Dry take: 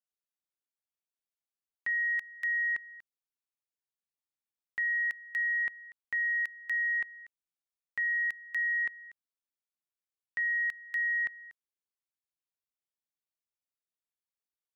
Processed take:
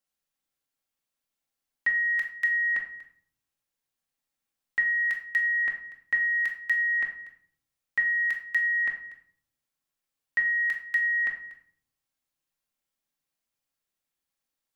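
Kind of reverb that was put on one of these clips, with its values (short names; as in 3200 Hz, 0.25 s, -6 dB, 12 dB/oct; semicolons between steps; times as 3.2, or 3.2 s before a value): shoebox room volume 840 m³, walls furnished, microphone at 2.2 m; gain +6 dB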